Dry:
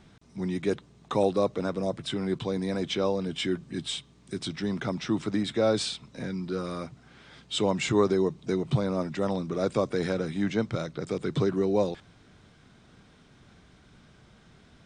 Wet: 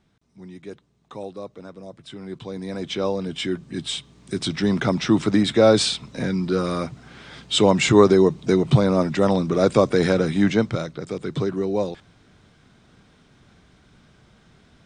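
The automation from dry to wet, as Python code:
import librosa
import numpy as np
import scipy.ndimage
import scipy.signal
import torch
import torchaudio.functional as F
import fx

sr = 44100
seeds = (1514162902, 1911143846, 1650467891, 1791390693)

y = fx.gain(x, sr, db=fx.line((1.89, -10.0), (3.05, 3.0), (3.59, 3.0), (4.67, 9.5), (10.46, 9.5), (11.03, 1.5)))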